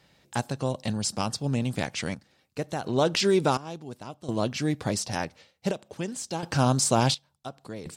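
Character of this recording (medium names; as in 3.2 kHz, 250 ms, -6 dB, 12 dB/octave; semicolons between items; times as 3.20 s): random-step tremolo 1.4 Hz, depth 85%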